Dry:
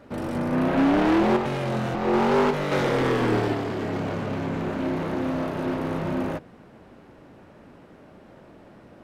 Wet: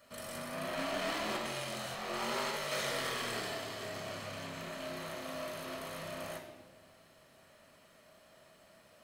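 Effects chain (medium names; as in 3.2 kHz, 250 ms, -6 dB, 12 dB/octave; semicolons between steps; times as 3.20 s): graphic EQ with 31 bands 630 Hz +8 dB, 1.25 kHz -3 dB, 4 kHz +4 dB; in parallel at -6 dB: saturation -28 dBFS, distortion -7 dB; on the sum: pre-emphasis filter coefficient 0.97; reverberation RT60 1.3 s, pre-delay 6 ms, DRR 3 dB; trim -4 dB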